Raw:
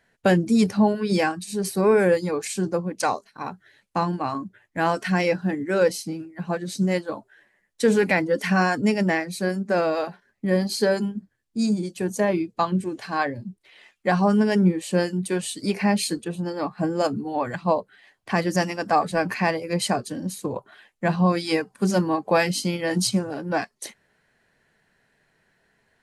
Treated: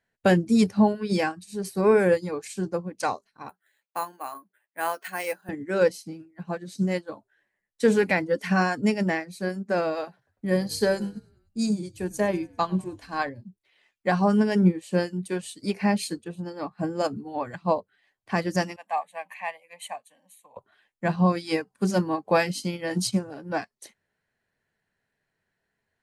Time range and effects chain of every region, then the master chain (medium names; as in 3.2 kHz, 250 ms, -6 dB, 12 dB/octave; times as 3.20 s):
3.49–5.49 s: high-pass 560 Hz + careless resampling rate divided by 4×, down filtered, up hold
10.07–13.29 s: treble shelf 7.1 kHz +7 dB + frequency-shifting echo 99 ms, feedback 64%, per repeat -43 Hz, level -21 dB
18.76–20.57 s: high-pass 750 Hz + static phaser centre 1.4 kHz, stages 6
whole clip: peaking EQ 91 Hz +6.5 dB 0.43 oct; upward expansion 1.5:1, over -41 dBFS